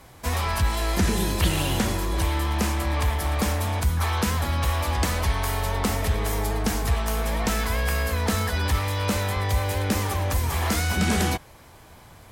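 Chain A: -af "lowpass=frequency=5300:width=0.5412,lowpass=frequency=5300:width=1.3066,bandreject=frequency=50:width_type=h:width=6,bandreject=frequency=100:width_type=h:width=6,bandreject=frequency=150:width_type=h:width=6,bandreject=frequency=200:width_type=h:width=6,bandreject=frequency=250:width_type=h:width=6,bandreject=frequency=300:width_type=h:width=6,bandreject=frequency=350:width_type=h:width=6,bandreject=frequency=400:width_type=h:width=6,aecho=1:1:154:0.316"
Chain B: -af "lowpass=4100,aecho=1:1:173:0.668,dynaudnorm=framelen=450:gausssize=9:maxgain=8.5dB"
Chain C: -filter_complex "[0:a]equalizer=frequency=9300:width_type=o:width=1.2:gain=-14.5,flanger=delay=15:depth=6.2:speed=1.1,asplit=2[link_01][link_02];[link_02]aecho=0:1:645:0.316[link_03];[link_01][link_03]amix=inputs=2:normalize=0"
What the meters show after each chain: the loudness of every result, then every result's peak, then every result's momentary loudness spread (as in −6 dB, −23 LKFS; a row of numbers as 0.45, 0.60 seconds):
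−25.5, −17.5, −28.5 LKFS; −10.5, −3.5, −12.5 dBFS; 3, 6, 4 LU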